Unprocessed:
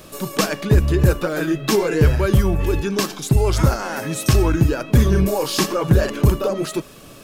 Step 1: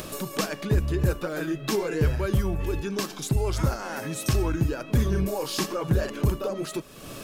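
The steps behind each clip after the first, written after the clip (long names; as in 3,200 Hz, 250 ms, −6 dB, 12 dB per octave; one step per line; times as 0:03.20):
upward compression, threshold −18 dBFS
level −8.5 dB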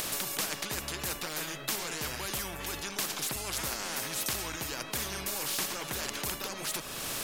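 every bin compressed towards the loudest bin 4 to 1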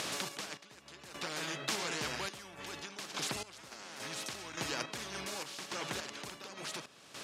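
sample-and-hold tremolo, depth 90%
band-pass filter 120–6,400 Hz
level +1 dB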